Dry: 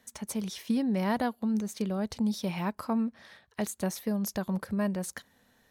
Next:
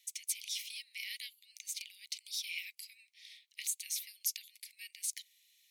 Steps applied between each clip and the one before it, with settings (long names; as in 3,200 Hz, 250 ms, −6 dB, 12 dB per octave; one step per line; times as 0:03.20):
Butterworth high-pass 2,100 Hz 96 dB per octave
level +3.5 dB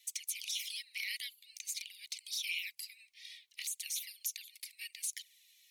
brickwall limiter −30 dBFS, peak gain reduction 10 dB
flanger swept by the level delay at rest 3.6 ms, full sweep at −38 dBFS
level +6.5 dB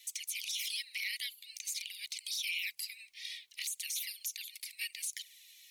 brickwall limiter −35 dBFS, peak gain reduction 10 dB
level +7.5 dB